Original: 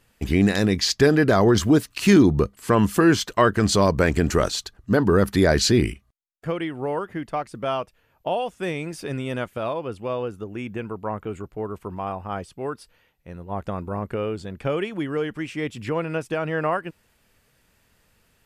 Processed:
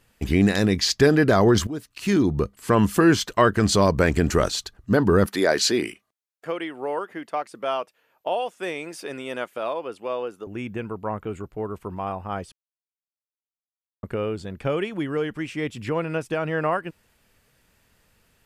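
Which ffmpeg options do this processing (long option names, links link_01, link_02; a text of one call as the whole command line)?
ffmpeg -i in.wav -filter_complex "[0:a]asettb=1/sr,asplit=3[link_01][link_02][link_03];[link_01]atrim=end=5.264[link_04];[link_02]atrim=start=5.26:end=10.47,asetpts=PTS-STARTPTS,afade=type=in:duration=0.004:curve=qsin,afade=type=out:start_time=5.206:duration=0.004:curve=qsin,highpass=350[link_05];[link_03]atrim=start=10.466[link_06];[link_04][link_05]acrossfade=duration=0.004:curve1=hsin:curve2=qsin[link_07];[link_07][link_06]acrossfade=duration=0.004:curve1=qsin:curve2=hsin,asplit=4[link_08][link_09][link_10][link_11];[link_08]atrim=end=1.67,asetpts=PTS-STARTPTS,afade=type=out:start_time=1.666:duration=0.004:curve=hsin:silence=0.133352[link_12];[link_09]atrim=start=1.67:end=12.52,asetpts=PTS-STARTPTS,afade=type=in:duration=1.11:silence=0.133352,afade=type=out:start_time=10.846:duration=0.004:curve=hsin[link_13];[link_10]atrim=start=12.52:end=14.03,asetpts=PTS-STARTPTS,volume=0[link_14];[link_11]atrim=start=14.03,asetpts=PTS-STARTPTS,afade=type=in:duration=0.004:curve=hsin[link_15];[link_12][link_13][link_14][link_15]concat=n=4:v=0:a=1" out.wav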